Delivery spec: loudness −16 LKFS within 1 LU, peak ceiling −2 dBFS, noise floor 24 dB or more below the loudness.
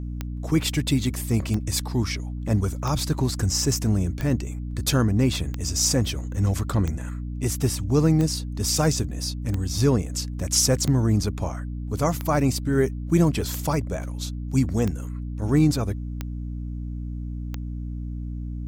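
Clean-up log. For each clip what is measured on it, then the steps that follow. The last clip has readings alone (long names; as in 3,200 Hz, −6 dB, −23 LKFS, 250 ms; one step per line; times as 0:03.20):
number of clicks 14; mains hum 60 Hz; hum harmonics up to 300 Hz; level of the hum −28 dBFS; integrated loudness −24.5 LKFS; sample peak −7.5 dBFS; target loudness −16.0 LKFS
→ click removal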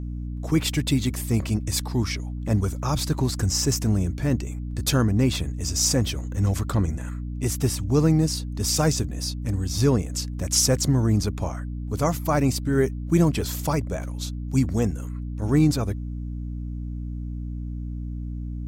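number of clicks 0; mains hum 60 Hz; hum harmonics up to 300 Hz; level of the hum −28 dBFS
→ hum removal 60 Hz, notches 5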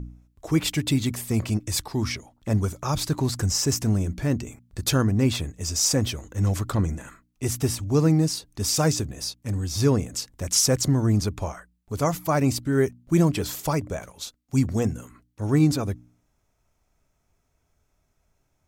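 mains hum none found; integrated loudness −24.5 LKFS; sample peak −8.5 dBFS; target loudness −16.0 LKFS
→ level +8.5 dB
brickwall limiter −2 dBFS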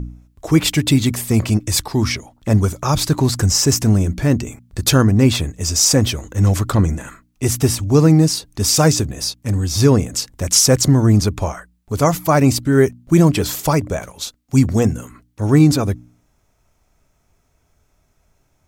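integrated loudness −16.0 LKFS; sample peak −2.0 dBFS; background noise floor −63 dBFS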